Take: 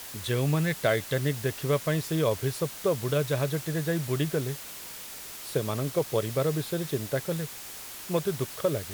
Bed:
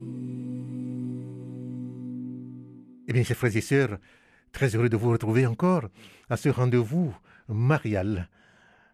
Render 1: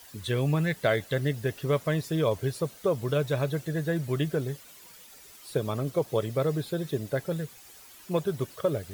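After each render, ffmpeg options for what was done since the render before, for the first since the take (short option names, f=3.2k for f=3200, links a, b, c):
-af "afftdn=nr=12:nf=-42"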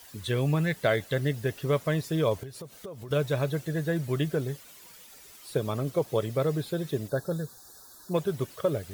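-filter_complex "[0:a]asettb=1/sr,asplit=3[a][b][c];[a]atrim=end=2.434[d];[b]atrim=start=2.43:end=3.11,asetpts=PTS-STARTPTS,afade=t=in:d=0.004:c=qsin,afade=t=out:st=0.676:d=0.004:c=qsin,acompressor=threshold=-38dB:ratio=6:attack=3.2:release=140:knee=1:detection=peak[e];[c]atrim=start=3.106[f];[d][e]acrossfade=d=0.004:c1=hsin:c2=qsin[g];[g][f]acrossfade=d=0.004:c1=qsin:c2=hsin,asplit=3[h][i][j];[h]afade=t=out:st=7.07:d=0.02[k];[i]asuperstop=centerf=2500:order=12:qfactor=1.3,afade=t=in:st=7.07:d=0.02,afade=t=out:st=8.13:d=0.02[l];[j]afade=t=in:st=8.13:d=0.02[m];[k][l][m]amix=inputs=3:normalize=0"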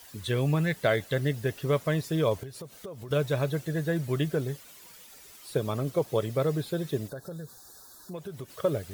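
-filter_complex "[0:a]asettb=1/sr,asplit=3[a][b][c];[a]atrim=end=7.114[d];[b]atrim=start=7.11:end=8.5,asetpts=PTS-STARTPTS,afade=t=in:d=0.004:c=qsin,afade=t=out:st=1.386:d=0.004:c=qsin,acompressor=threshold=-38dB:ratio=3:attack=3.2:release=140:knee=1:detection=peak[e];[c]atrim=start=8.496[f];[d][e]acrossfade=d=0.004:c1=hsin:c2=qsin[g];[g][f]acrossfade=d=0.004:c1=qsin:c2=hsin"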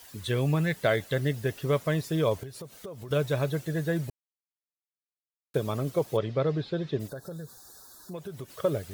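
-filter_complex "[0:a]asplit=3[a][b][c];[a]afade=t=out:st=6.16:d=0.02[d];[b]lowpass=f=4.7k:w=0.5412,lowpass=f=4.7k:w=1.3066,afade=t=in:st=6.16:d=0.02,afade=t=out:st=6.99:d=0.02[e];[c]afade=t=in:st=6.99:d=0.02[f];[d][e][f]amix=inputs=3:normalize=0,asplit=3[g][h][i];[g]atrim=end=4.1,asetpts=PTS-STARTPTS,afade=t=out:st=4.096:d=0.004:c=hsin[j];[h]atrim=start=4.1:end=5.54,asetpts=PTS-STARTPTS,volume=0[k];[i]atrim=start=5.54,asetpts=PTS-STARTPTS,afade=t=in:d=0.004:c=hsin[l];[j][k][l]concat=n=3:v=0:a=1"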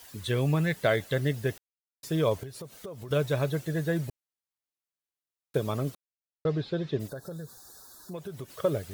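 -filter_complex "[0:a]asplit=5[a][b][c][d][e];[a]atrim=end=1.58,asetpts=PTS-STARTPTS,afade=t=out:st=1.576:d=0.004:c=hsin[f];[b]atrim=start=1.58:end=2.03,asetpts=PTS-STARTPTS,volume=0[g];[c]atrim=start=2.03:end=5.95,asetpts=PTS-STARTPTS,afade=t=in:d=0.004:c=hsin,afade=t=out:st=3.916:d=0.004:c=hsin[h];[d]atrim=start=5.95:end=6.45,asetpts=PTS-STARTPTS,volume=0[i];[e]atrim=start=6.45,asetpts=PTS-STARTPTS,afade=t=in:d=0.004:c=hsin[j];[f][g][h][i][j]concat=n=5:v=0:a=1"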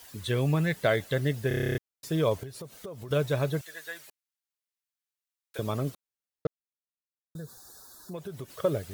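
-filter_complex "[0:a]asettb=1/sr,asplit=3[a][b][c];[a]atrim=end=3.614[d];[b]atrim=start=3.61:end=5.59,asetpts=PTS-STARTPTS,afade=t=in:d=0.004:c=qsin,afade=t=out:st=1.976:d=0.004:c=qsin,highpass=1.3k[e];[c]atrim=start=5.586[f];[d][e]acrossfade=d=0.004:c1=hsin:c2=qsin[g];[g][f]acrossfade=d=0.004:c1=qsin:c2=hsin,asplit=13[h][i][j][k][l][m][n][o][p][q][r][s][t];[h]atrim=end=1.512[u];[i]atrim=start=1.478:end=1.512[v];[j]atrim=start=1.478:end=1.512[w];[k]atrim=start=1.478:end=1.512[x];[l]atrim=start=1.478:end=1.512[y];[m]atrim=start=1.478:end=1.512[z];[n]atrim=start=1.478:end=1.512[aa];[o]atrim=start=1.478:end=1.512[ab];[p]atrim=start=1.478:end=1.512[ac];[q]atrim=start=1.478:end=1.512[ad];[r]atrim=start=1.778:end=6.47,asetpts=PTS-STARTPTS,afade=t=out:st=4.688:d=0.004:c=hsin[ae];[s]atrim=start=6.47:end=7.35,asetpts=PTS-STARTPTS,volume=0[af];[t]atrim=start=7.35,asetpts=PTS-STARTPTS,afade=t=in:d=0.004:c=hsin[ag];[u][v]acrossfade=d=0.004:c1=hsin:c2=hsin[ah];[ah][w]acrossfade=d=0.004:c1=hsin:c2=hsin[ai];[ai][x]acrossfade=d=0.004:c1=hsin:c2=hsin[aj];[aj][y]acrossfade=d=0.004:c1=hsin:c2=hsin[ak];[ak][z]acrossfade=d=0.004:c1=hsin:c2=hsin[al];[al][aa]acrossfade=d=0.004:c1=hsin:c2=hsin[am];[am][ab]acrossfade=d=0.004:c1=hsin:c2=hsin[an];[an][ac]acrossfade=d=0.004:c1=hsin:c2=hsin[ao];[ao][ad]acrossfade=d=0.004:c1=hsin:c2=hsin[ap];[ae][af][ag]concat=n=3:v=0:a=1[aq];[ap][aq]acrossfade=d=0.004:c1=hsin:c2=hsin"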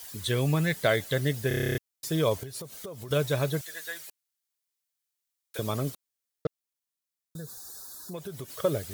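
-af "highshelf=f=3.3k:g=8,bandreject=f=2.7k:w=27"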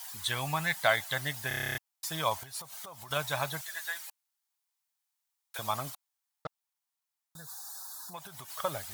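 -af "lowshelf=f=600:t=q:w=3:g=-11"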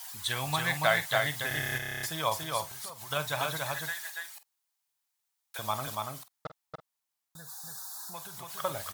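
-filter_complex "[0:a]asplit=2[a][b];[b]adelay=47,volume=-13dB[c];[a][c]amix=inputs=2:normalize=0,aecho=1:1:285:0.708"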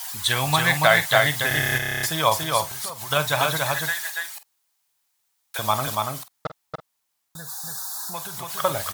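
-af "volume=10dB,alimiter=limit=-3dB:level=0:latency=1"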